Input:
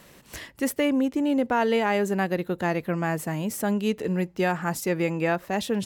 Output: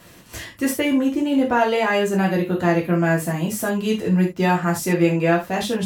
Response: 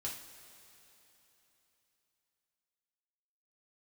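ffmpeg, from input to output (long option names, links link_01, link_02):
-filter_complex "[1:a]atrim=start_sample=2205,atrim=end_sample=4410,asetrate=48510,aresample=44100[link_01];[0:a][link_01]afir=irnorm=-1:irlink=0,volume=7dB"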